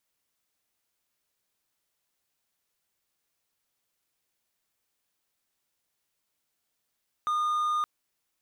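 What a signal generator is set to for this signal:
tone triangle 1,220 Hz −22.5 dBFS 0.57 s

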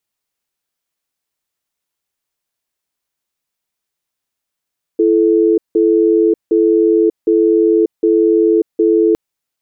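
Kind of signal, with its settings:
tone pair in a cadence 335 Hz, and 435 Hz, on 0.59 s, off 0.17 s, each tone −11 dBFS 4.16 s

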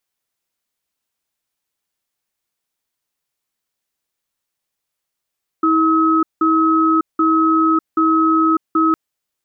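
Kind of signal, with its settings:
tone pair in a cadence 321 Hz, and 1,280 Hz, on 0.60 s, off 0.18 s, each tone −14 dBFS 3.31 s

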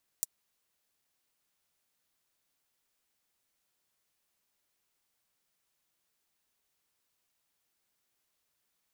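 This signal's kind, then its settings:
closed synth hi-hat, high-pass 7,000 Hz, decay 0.03 s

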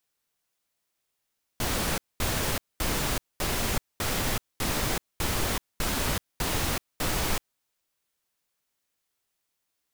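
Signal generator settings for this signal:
noise bursts pink, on 0.38 s, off 0.22 s, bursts 10, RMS −27.5 dBFS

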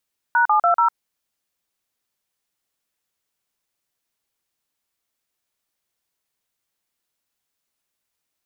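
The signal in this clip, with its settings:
touch tones "#720", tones 104 ms, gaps 40 ms, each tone −16 dBFS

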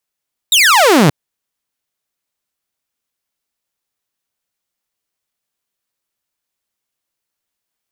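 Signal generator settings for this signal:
single falling chirp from 3,900 Hz, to 130 Hz, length 0.58 s saw, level −4 dB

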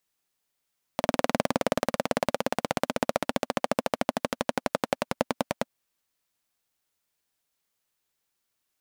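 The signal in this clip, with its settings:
pulse-train model of a single-cylinder engine, changing speed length 4.73 s, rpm 2,400, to 1,100, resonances 250/550 Hz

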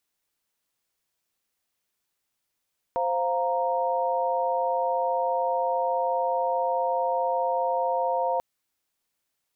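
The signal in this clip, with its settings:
held notes C5/F5/A#5 sine, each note −27 dBFS 5.44 s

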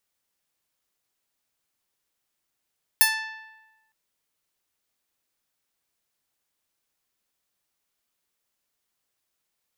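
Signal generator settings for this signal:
Karplus-Strong string A5, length 0.91 s, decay 1.15 s, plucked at 0.21, bright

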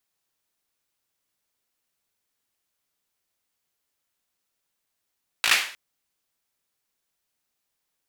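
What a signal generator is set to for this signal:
synth clap length 0.31 s, bursts 5, apart 18 ms, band 2,200 Hz, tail 0.46 s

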